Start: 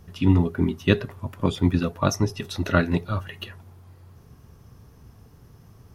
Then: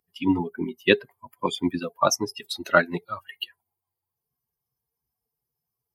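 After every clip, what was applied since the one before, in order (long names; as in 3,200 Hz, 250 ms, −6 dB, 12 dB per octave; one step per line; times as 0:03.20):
spectral dynamics exaggerated over time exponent 2
high-pass filter 360 Hz 12 dB per octave
level +7.5 dB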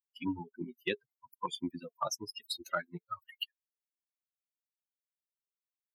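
spectral dynamics exaggerated over time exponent 2
downward compressor 4 to 1, threshold −34 dBFS, peak gain reduction 17 dB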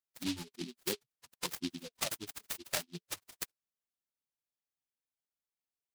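short delay modulated by noise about 3,600 Hz, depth 0.24 ms
level −1.5 dB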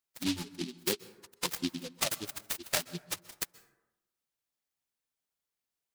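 dense smooth reverb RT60 0.95 s, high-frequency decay 0.4×, pre-delay 115 ms, DRR 18.5 dB
level +4.5 dB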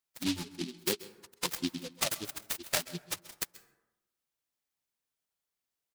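single-tap delay 133 ms −20.5 dB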